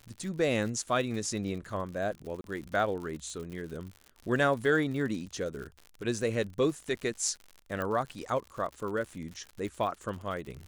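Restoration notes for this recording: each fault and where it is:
crackle 89/s -38 dBFS
2.41–2.44 gap 32 ms
7.82 pop -21 dBFS

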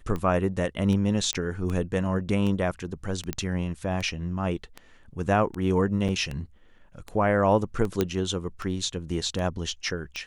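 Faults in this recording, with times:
tick 78 rpm -20 dBFS
1.33 pop -13 dBFS
3.33 pop -13 dBFS
6.08–6.09 gap 7.2 ms
8.01 pop -10 dBFS

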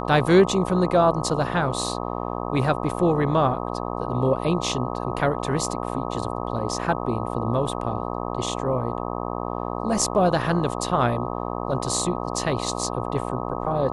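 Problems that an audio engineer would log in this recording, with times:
buzz 60 Hz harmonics 21 -29 dBFS

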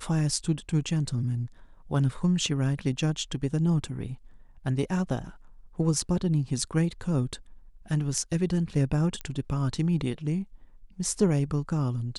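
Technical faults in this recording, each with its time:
9.21 pop -19 dBFS

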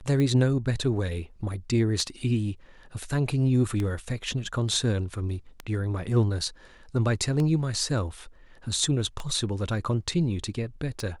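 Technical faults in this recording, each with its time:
tick 33 1/3 rpm -17 dBFS

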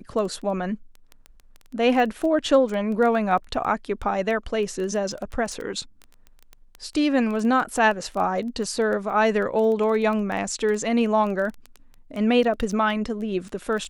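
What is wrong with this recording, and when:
crackle 10/s -27 dBFS

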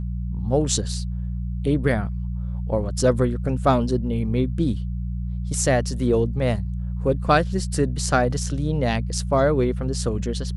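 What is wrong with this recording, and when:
hum 60 Hz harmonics 3 -27 dBFS

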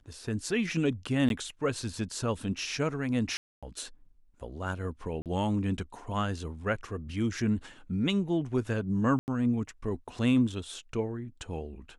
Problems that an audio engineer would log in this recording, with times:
1.29–1.3 gap 12 ms
3.37–3.63 gap 0.256 s
5.22–5.26 gap 38 ms
9.19–9.28 gap 89 ms

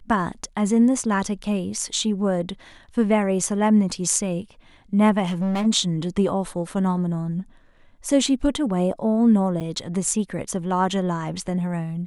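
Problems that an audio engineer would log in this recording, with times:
5.25–5.67 clipped -20.5 dBFS
9.6–9.61 gap 7.9 ms

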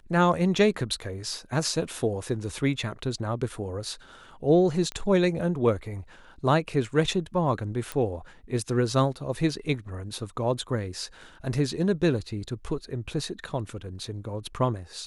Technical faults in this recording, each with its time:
4.92 pop -19 dBFS
7.92 pop -16 dBFS

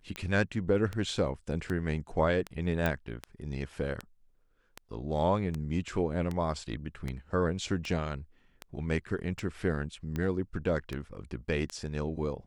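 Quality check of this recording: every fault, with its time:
tick 78 rpm -21 dBFS
2.86 pop -16 dBFS

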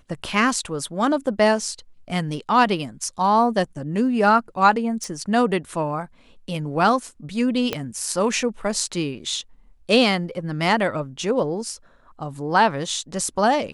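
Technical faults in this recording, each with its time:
5.04 pop
7.73 pop -9 dBFS

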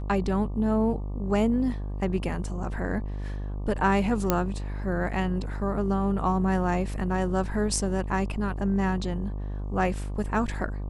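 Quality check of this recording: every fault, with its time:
buzz 50 Hz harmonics 24 -32 dBFS
4.3 pop -7 dBFS

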